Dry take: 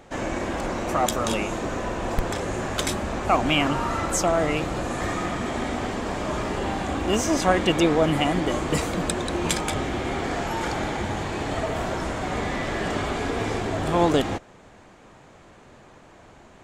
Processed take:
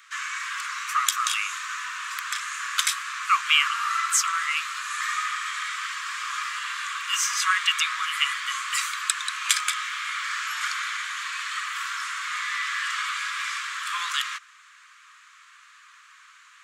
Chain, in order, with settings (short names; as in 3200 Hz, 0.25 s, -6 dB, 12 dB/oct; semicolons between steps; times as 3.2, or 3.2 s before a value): steep high-pass 1100 Hz 96 dB/oct; gain +5 dB